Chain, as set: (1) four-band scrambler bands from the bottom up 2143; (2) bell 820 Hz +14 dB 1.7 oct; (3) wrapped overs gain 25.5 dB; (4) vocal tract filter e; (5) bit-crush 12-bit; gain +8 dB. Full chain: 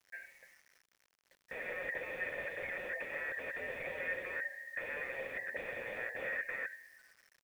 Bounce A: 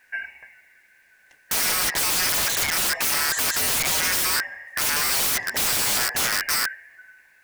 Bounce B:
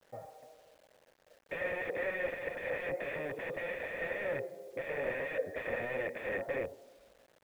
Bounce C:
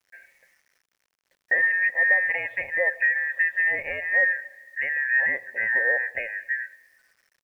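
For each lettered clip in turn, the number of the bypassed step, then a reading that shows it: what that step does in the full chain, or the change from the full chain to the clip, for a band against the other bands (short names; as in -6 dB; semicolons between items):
4, 4 kHz band +18.0 dB; 1, 2 kHz band -9.5 dB; 3, momentary loudness spread change +4 LU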